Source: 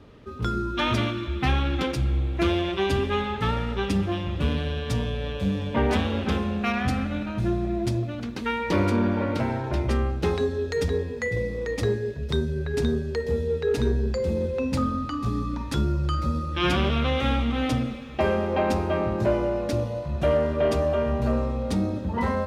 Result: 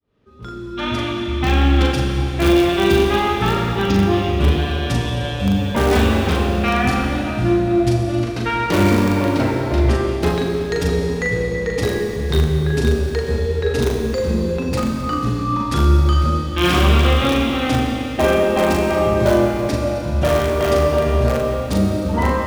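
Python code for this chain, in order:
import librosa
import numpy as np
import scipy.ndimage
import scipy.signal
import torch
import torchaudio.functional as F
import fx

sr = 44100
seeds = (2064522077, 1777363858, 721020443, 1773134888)

p1 = fx.fade_in_head(x, sr, length_s=1.9)
p2 = fx.steep_lowpass(p1, sr, hz=7000.0, slope=96, at=(3.64, 4.29))
p3 = (np.mod(10.0 ** (14.5 / 20.0) * p2 + 1.0, 2.0) - 1.0) / 10.0 ** (14.5 / 20.0)
p4 = p2 + (p3 * librosa.db_to_amplitude(-7.0))
p5 = fx.doubler(p4, sr, ms=40.0, db=-4.0)
p6 = fx.rev_schroeder(p5, sr, rt60_s=3.0, comb_ms=29, drr_db=2.0)
y = p6 * librosa.db_to_amplitude(2.0)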